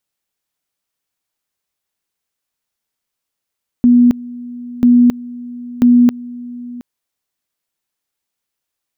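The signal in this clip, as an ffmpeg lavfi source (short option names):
-f lavfi -i "aevalsrc='pow(10,(-5-20.5*gte(mod(t,0.99),0.27))/20)*sin(2*PI*243*t)':d=2.97:s=44100"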